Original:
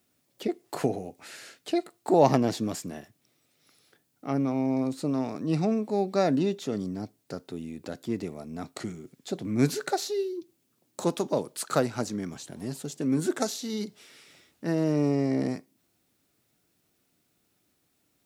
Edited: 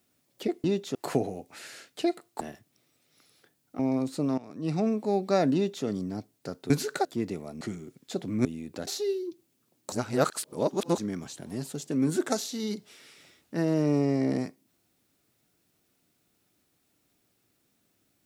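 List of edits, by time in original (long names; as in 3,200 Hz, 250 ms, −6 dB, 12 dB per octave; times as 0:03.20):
0:02.10–0:02.90: remove
0:04.28–0:04.64: remove
0:05.23–0:05.74: fade in, from −17 dB
0:06.39–0:06.70: duplicate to 0:00.64
0:07.55–0:07.97: swap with 0:09.62–0:09.97
0:08.53–0:08.78: remove
0:11.02–0:12.08: reverse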